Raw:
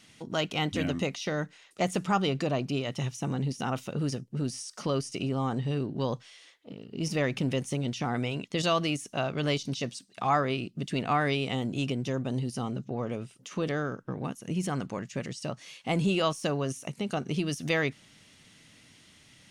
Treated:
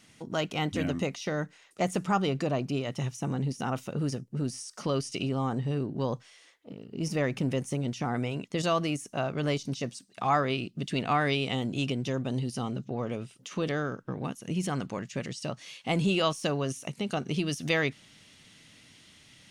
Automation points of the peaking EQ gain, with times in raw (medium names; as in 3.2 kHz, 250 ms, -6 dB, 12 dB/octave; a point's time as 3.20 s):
peaking EQ 3.5 kHz 1.2 oct
4.74 s -4 dB
5.16 s +5 dB
5.55 s -5.5 dB
9.97 s -5.5 dB
10.43 s +2.5 dB